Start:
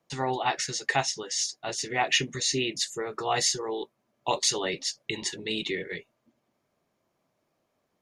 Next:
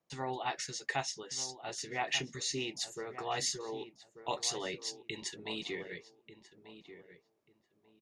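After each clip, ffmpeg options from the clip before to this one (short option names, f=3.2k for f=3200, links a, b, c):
-filter_complex "[0:a]asplit=2[a][b];[b]adelay=1189,lowpass=f=1.7k:p=1,volume=-11.5dB,asplit=2[c][d];[d]adelay=1189,lowpass=f=1.7k:p=1,volume=0.23,asplit=2[e][f];[f]adelay=1189,lowpass=f=1.7k:p=1,volume=0.23[g];[a][c][e][g]amix=inputs=4:normalize=0,volume=-9dB"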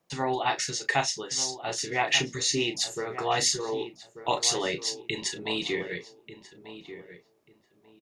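-filter_complex "[0:a]asplit=2[a][b];[b]adelay=34,volume=-9.5dB[c];[a][c]amix=inputs=2:normalize=0,volume=9dB"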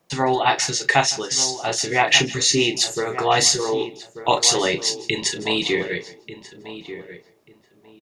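-af "aecho=1:1:160:0.1,volume=8.5dB"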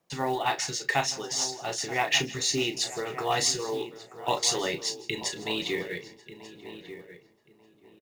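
-filter_complex "[0:a]asplit=2[a][b];[b]adelay=932.9,volume=-15dB,highshelf=f=4k:g=-21[c];[a][c]amix=inputs=2:normalize=0,acrusher=bits=6:mode=log:mix=0:aa=0.000001,volume=-9dB"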